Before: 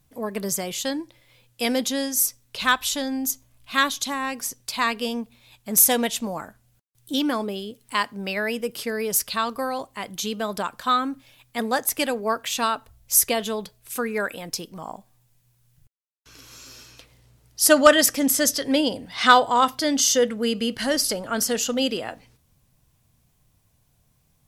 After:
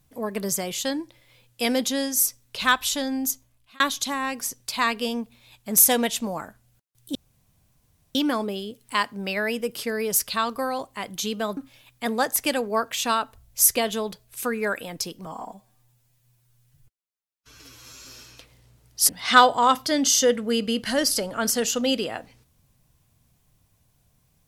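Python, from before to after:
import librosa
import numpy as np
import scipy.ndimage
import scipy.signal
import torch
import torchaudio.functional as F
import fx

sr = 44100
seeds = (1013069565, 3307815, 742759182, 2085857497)

y = fx.edit(x, sr, fx.fade_out_span(start_s=3.27, length_s=0.53),
    fx.insert_room_tone(at_s=7.15, length_s=1.0),
    fx.cut(start_s=10.57, length_s=0.53),
    fx.stretch_span(start_s=14.79, length_s=1.86, factor=1.5),
    fx.cut(start_s=17.69, length_s=1.33), tone=tone)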